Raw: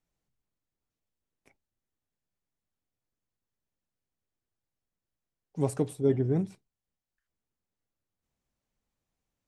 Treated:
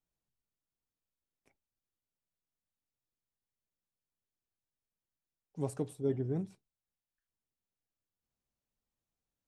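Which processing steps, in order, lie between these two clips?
parametric band 2,100 Hz −3 dB 0.42 octaves
level −7.5 dB

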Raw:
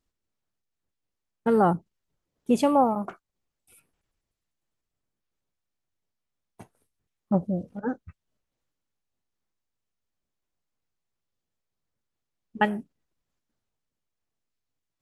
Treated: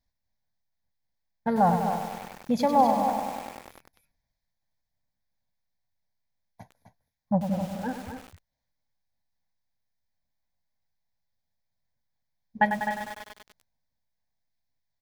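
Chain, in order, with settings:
phaser with its sweep stopped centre 1,900 Hz, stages 8
on a send: single-tap delay 257 ms −8.5 dB
on the sum: feedback echo at a low word length 98 ms, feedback 80%, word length 7 bits, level −7.5 dB
level +2 dB

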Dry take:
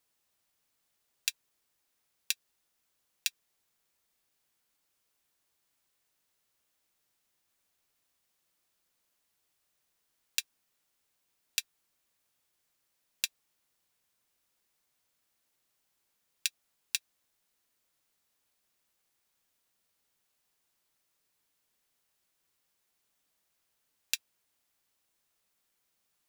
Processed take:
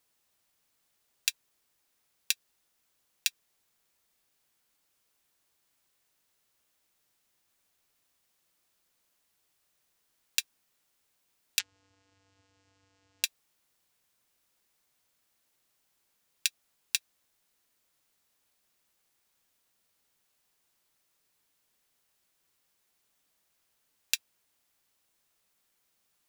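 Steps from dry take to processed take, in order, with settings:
0:11.59–0:13.24: channel vocoder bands 8, square 96.8 Hz
level +3 dB

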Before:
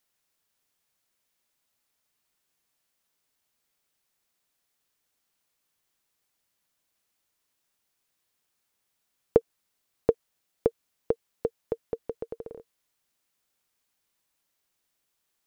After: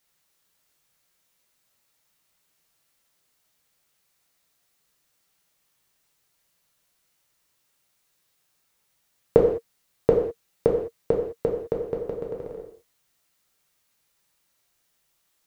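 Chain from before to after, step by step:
reverb whose tail is shaped and stops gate 230 ms falling, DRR −1.5 dB
level +3 dB

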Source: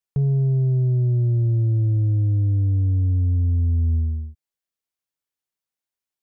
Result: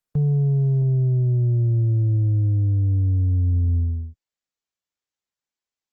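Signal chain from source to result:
speed change +5%
Opus 24 kbit/s 48,000 Hz

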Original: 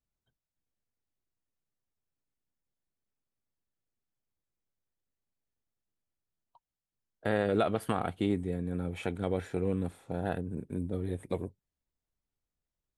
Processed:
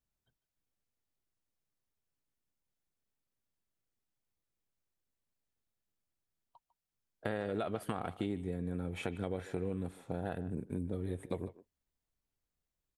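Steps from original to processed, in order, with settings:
downward compressor 4 to 1, threshold −33 dBFS, peak gain reduction 9.5 dB
far-end echo of a speakerphone 150 ms, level −15 dB

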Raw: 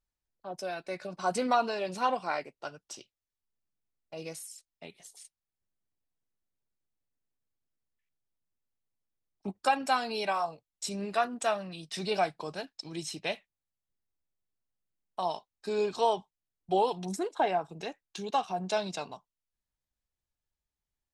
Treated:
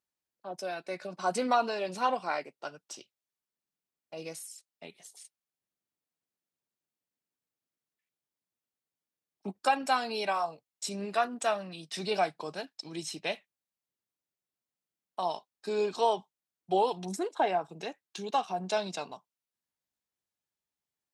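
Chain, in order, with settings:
high-pass filter 160 Hz

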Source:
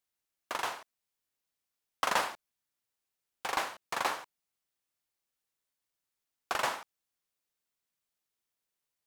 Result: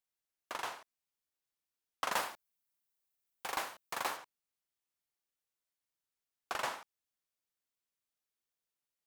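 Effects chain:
0:02.12–0:04.17: high-shelf EQ 11,000 Hz +11.5 dB
level −5.5 dB

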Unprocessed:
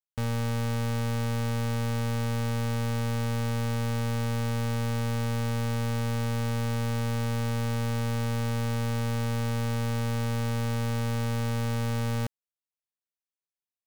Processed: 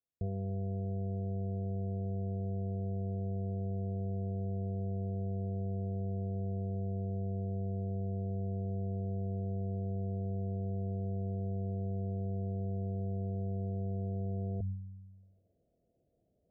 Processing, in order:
high-pass filter 52 Hz
low-shelf EQ 95 Hz +10.5 dB
hum removal 114 Hz, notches 3
brickwall limiter −32.5 dBFS, peak gain reduction 11 dB
reversed playback
upward compression, threshold −43 dBFS
reversed playback
speed change −16%
Chebyshev low-pass with heavy ripple 700 Hz, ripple 3 dB
level +4 dB

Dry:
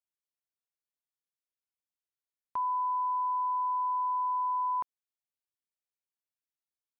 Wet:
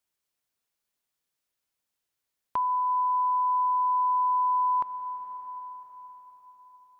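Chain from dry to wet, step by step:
dense smooth reverb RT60 4.9 s, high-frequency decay 0.95×, DRR 10 dB
in parallel at +2.5 dB: downward compressor, threshold −46 dBFS, peak gain reduction 16 dB
on the sum: level +3 dB

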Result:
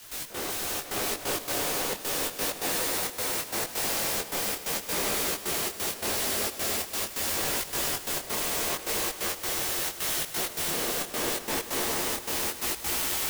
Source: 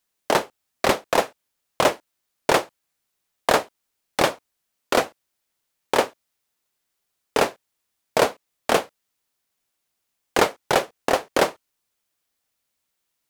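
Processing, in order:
sign of each sample alone
frequency shifter −95 Hz
echo that builds up and dies away 100 ms, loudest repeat 5, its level −4.5 dB
gate pattern ".x.xxxx.xx" 132 BPM −12 dB
micro pitch shift up and down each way 27 cents
level −4.5 dB

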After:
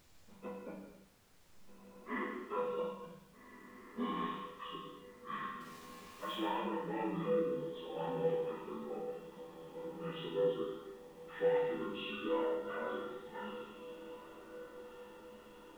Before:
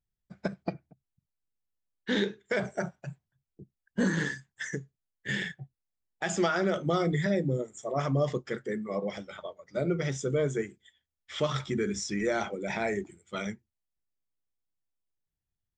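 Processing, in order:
partials spread apart or drawn together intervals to 77%
parametric band 120 Hz −14 dB 0.77 octaves
0:08.99–0:10.04: output level in coarse steps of 20 dB
on a send: feedback delay with all-pass diffusion 1,688 ms, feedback 40%, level −14.5 dB
0:05.60–0:06.35: on the sum: bit-depth reduction 8 bits, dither none
upward compression, threshold −42 dBFS
resonators tuned to a chord E2 minor, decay 0.28 s
reverb whose tail is shaped and stops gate 360 ms falling, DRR −2 dB
background noise pink −69 dBFS
level +1.5 dB

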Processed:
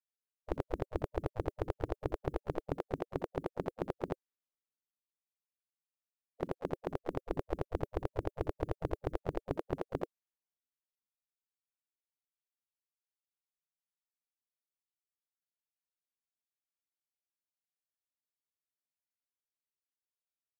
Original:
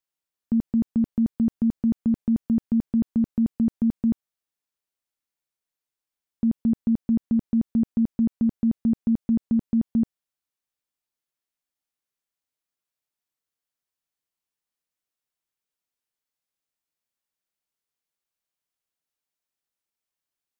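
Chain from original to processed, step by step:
reverb reduction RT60 0.6 s
gate on every frequency bin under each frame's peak −20 dB weak
pitch-shifted copies added +4 semitones −16 dB, +5 semitones −15 dB, +7 semitones −14 dB
level +11.5 dB

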